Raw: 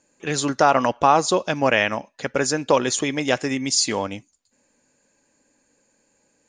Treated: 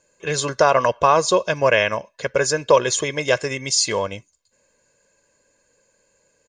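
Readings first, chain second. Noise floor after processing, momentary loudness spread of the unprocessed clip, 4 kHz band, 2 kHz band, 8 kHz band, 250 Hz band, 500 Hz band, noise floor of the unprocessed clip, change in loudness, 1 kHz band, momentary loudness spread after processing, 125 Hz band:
−66 dBFS, 10 LU, +1.0 dB, +2.0 dB, +1.5 dB, −6.0 dB, +3.5 dB, −67 dBFS, +1.5 dB, 0.0 dB, 9 LU, +1.0 dB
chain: comb filter 1.9 ms, depth 70%

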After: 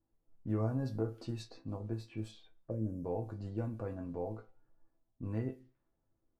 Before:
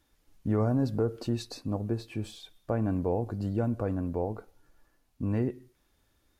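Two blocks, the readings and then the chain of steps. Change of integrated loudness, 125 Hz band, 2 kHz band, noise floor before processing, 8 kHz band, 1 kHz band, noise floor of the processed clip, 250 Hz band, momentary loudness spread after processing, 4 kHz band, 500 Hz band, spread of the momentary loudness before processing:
−8.5 dB, −7.0 dB, −9.0 dB, −72 dBFS, below −10 dB, −9.5 dB, −81 dBFS, −9.0 dB, 11 LU, −10.0 dB, −8.5 dB, 11 LU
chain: gain on a spectral selection 0:02.70–0:03.05, 630–4,900 Hz −22 dB
resonators tuned to a chord A2 minor, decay 0.21 s
low-pass that shuts in the quiet parts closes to 680 Hz, open at −38.5 dBFS
level +3 dB

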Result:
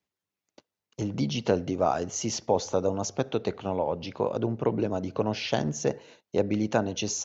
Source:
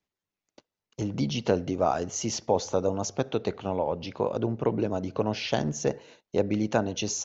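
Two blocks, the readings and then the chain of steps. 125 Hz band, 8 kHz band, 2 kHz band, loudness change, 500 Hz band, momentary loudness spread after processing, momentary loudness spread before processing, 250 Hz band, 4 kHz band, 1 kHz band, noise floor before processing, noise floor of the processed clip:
0.0 dB, can't be measured, 0.0 dB, 0.0 dB, 0.0 dB, 5 LU, 5 LU, 0.0 dB, 0.0 dB, 0.0 dB, below −85 dBFS, below −85 dBFS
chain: high-pass filter 58 Hz

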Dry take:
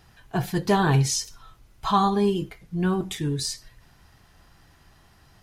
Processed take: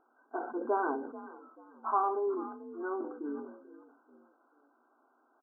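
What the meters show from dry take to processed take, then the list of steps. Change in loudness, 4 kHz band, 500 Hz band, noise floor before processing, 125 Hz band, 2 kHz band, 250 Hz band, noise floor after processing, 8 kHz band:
−10.5 dB, below −40 dB, −7.0 dB, −57 dBFS, below −40 dB, −10.5 dB, −14.0 dB, −71 dBFS, below −40 dB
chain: echo with shifted repeats 438 ms, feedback 31%, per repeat +48 Hz, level −18 dB
brick-wall band-pass 230–1,600 Hz
level that may fall only so fast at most 71 dB per second
level −7.5 dB

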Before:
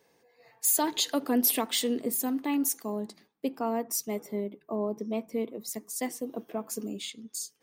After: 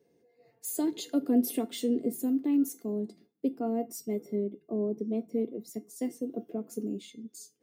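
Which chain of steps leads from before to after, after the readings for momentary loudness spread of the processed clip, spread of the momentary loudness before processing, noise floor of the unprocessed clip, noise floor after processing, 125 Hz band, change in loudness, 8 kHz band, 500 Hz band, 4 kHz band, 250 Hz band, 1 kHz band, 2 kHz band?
13 LU, 12 LU, −68 dBFS, −70 dBFS, can't be measured, −2.0 dB, −11.5 dB, −0.5 dB, −12.0 dB, +2.5 dB, −9.0 dB, below −10 dB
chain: high-pass filter 76 Hz
low shelf with overshoot 590 Hz +13.5 dB, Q 1.5
tuned comb filter 700 Hz, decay 0.21 s, harmonics all, mix 80%

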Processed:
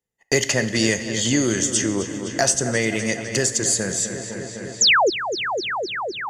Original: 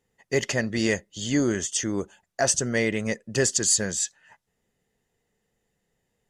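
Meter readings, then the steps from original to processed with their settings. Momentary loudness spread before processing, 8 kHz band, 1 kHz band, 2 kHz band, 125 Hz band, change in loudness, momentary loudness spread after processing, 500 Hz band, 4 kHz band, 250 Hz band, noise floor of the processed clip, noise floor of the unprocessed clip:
8 LU, +5.0 dB, +13.0 dB, +8.0 dB, +4.0 dB, +4.5 dB, 9 LU, +4.5 dB, +10.5 dB, +4.0 dB, −37 dBFS, −78 dBFS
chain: high-shelf EQ 5,200 Hz +7 dB
noise gate −50 dBFS, range −39 dB
coupled-rooms reverb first 0.96 s, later 3 s, from −20 dB, DRR 11 dB
speech leveller 2 s
sound drawn into the spectrogram fall, 0:04.81–0:05.10, 320–7,500 Hz −13 dBFS
on a send: feedback echo with a low-pass in the loop 254 ms, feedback 70%, low-pass 4,300 Hz, level −13 dB
on the sum: multiband upward and downward compressor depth 70%

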